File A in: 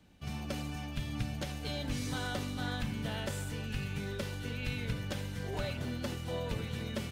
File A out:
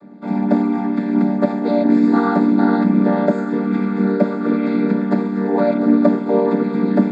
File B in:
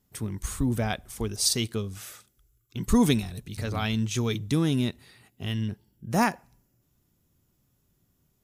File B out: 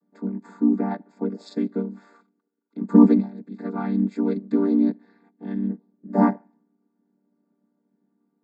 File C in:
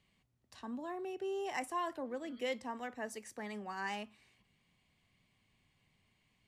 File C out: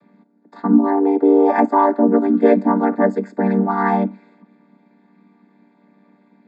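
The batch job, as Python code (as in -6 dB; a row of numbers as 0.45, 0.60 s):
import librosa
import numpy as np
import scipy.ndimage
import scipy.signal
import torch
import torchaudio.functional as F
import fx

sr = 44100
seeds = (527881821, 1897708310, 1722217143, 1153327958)

y = fx.chord_vocoder(x, sr, chord='minor triad', root=55)
y = scipy.signal.lfilter(np.full(15, 1.0 / 15), 1.0, y)
y = fx.low_shelf(y, sr, hz=140.0, db=-11.0)
y = y * 10.0 ** (-1.5 / 20.0) / np.max(np.abs(y))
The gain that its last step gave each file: +26.0, +9.0, +28.5 dB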